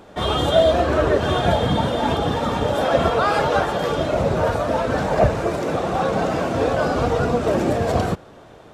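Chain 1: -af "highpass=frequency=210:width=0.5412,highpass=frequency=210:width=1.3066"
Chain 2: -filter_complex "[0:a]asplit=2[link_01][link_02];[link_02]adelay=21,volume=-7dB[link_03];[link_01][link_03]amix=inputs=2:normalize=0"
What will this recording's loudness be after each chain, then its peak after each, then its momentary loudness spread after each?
−20.5, −19.5 LKFS; −4.5, −3.0 dBFS; 5, 4 LU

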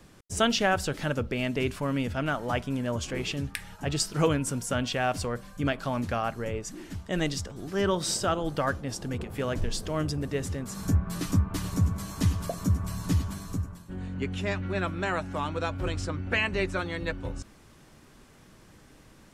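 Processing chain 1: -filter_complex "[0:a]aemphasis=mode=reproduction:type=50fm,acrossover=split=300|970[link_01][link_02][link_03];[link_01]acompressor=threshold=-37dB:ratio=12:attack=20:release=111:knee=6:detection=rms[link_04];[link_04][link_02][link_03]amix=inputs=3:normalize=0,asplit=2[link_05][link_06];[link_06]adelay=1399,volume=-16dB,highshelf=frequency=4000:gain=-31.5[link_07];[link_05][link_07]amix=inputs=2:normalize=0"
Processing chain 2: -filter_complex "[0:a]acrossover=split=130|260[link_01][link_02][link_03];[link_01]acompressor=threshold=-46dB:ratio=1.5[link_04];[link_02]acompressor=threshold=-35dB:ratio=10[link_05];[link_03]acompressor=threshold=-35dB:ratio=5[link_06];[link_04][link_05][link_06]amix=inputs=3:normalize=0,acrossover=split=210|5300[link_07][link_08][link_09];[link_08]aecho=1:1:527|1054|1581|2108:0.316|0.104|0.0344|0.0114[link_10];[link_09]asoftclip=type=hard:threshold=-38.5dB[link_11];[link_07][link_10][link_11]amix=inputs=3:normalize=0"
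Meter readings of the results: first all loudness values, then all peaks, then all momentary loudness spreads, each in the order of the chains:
−32.5, −35.0 LKFS; −10.5, −17.0 dBFS; 13, 7 LU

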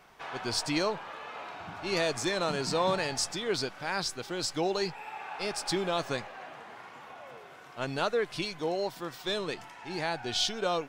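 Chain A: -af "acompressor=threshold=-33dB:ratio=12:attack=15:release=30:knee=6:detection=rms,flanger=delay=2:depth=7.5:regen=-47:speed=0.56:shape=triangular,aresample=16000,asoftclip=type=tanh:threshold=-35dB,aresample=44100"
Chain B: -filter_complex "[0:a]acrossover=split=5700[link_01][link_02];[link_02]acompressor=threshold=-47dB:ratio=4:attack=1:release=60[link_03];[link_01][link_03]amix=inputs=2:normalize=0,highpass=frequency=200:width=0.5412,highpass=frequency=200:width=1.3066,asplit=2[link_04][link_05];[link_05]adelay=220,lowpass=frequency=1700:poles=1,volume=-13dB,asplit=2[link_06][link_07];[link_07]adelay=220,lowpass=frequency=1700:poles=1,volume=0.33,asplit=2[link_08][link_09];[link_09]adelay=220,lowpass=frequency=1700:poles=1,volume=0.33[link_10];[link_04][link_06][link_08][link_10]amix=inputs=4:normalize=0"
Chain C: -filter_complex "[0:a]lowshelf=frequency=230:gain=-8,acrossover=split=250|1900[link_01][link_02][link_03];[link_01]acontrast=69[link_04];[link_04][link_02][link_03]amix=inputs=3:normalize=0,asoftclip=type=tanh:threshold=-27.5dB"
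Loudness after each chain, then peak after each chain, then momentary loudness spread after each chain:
−42.5, −32.5, −35.0 LKFS; −31.5, −15.0, −27.5 dBFS; 9, 15, 13 LU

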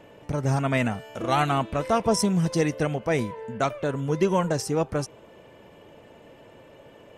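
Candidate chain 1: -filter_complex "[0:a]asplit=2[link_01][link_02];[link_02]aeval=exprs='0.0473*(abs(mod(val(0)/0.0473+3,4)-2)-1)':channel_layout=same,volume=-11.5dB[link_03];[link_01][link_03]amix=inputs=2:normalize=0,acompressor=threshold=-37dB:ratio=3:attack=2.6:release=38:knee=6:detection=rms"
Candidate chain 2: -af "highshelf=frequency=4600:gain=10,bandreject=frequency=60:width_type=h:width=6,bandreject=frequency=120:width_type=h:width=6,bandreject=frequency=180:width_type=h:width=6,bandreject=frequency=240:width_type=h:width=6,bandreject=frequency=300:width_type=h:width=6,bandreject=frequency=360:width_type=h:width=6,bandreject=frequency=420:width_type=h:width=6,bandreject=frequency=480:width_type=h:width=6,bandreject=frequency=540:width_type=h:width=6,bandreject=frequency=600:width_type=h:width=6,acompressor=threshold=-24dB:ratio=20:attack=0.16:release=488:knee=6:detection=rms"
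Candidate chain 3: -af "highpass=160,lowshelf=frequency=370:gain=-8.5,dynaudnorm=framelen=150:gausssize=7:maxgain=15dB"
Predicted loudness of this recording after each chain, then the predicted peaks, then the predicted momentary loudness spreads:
−37.0, −35.0, −18.5 LKFS; −24.5, −22.0, −1.0 dBFS; 13, 16, 22 LU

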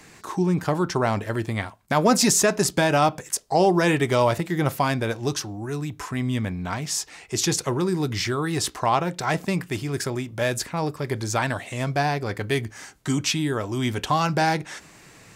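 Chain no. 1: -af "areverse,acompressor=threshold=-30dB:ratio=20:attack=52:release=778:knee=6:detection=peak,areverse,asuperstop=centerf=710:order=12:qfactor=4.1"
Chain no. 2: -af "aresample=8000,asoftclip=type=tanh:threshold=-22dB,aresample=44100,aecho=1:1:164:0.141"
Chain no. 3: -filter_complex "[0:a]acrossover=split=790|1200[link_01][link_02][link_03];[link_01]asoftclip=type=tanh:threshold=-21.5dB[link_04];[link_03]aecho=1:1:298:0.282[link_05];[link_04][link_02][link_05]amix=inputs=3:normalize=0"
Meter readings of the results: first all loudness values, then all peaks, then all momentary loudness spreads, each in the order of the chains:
−34.0, −29.0, −25.5 LKFS; −18.5, −18.0, −8.0 dBFS; 4, 6, 8 LU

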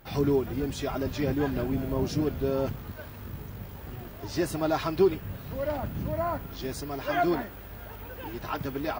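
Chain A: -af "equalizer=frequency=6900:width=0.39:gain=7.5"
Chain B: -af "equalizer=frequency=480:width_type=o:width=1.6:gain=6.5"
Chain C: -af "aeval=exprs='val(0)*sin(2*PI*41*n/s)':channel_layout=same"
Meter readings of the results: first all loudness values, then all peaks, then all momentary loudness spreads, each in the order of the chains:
−29.5, −25.5, −33.0 LKFS; −12.0, −7.5, −12.5 dBFS; 14, 18, 15 LU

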